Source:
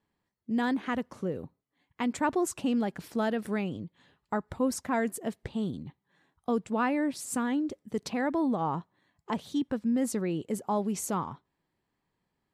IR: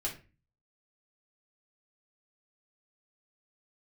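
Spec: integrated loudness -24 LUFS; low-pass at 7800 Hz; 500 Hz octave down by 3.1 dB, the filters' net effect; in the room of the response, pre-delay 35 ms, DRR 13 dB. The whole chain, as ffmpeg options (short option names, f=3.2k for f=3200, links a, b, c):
-filter_complex "[0:a]lowpass=7.8k,equalizer=f=500:t=o:g=-4,asplit=2[a][b];[1:a]atrim=start_sample=2205,adelay=35[c];[b][c]afir=irnorm=-1:irlink=0,volume=-15.5dB[d];[a][d]amix=inputs=2:normalize=0,volume=8.5dB"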